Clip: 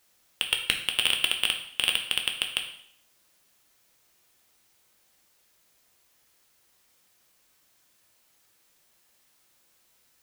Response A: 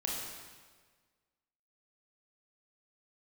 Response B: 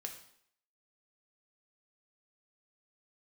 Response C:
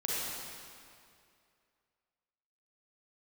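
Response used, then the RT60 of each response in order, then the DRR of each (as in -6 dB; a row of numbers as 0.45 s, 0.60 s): B; 1.5 s, 0.65 s, 2.4 s; -3.5 dB, 2.5 dB, -6.5 dB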